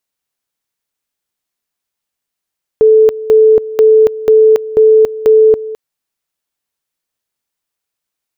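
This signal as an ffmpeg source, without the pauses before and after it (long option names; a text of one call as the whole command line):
ffmpeg -f lavfi -i "aevalsrc='pow(10,(-3-16.5*gte(mod(t,0.49),0.28))/20)*sin(2*PI*437*t)':duration=2.94:sample_rate=44100" out.wav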